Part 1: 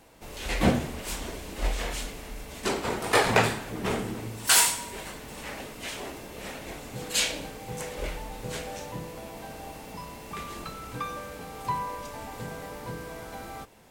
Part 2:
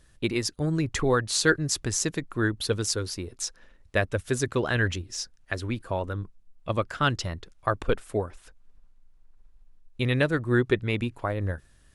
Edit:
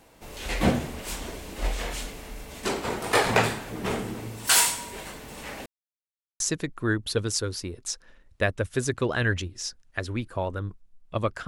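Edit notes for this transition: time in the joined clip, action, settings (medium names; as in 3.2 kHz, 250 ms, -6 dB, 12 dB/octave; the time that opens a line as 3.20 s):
part 1
5.66–6.40 s: mute
6.40 s: go over to part 2 from 1.94 s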